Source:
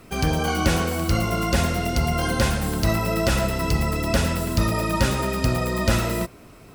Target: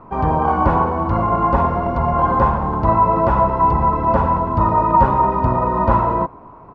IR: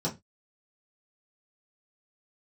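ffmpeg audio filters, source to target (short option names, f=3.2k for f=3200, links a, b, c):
-filter_complex "[0:a]asplit=2[a][b];[b]asetrate=35002,aresample=44100,atempo=1.25992,volume=-9dB[c];[a][c]amix=inputs=2:normalize=0,lowpass=f=980:t=q:w=8.6,volume=1.5dB"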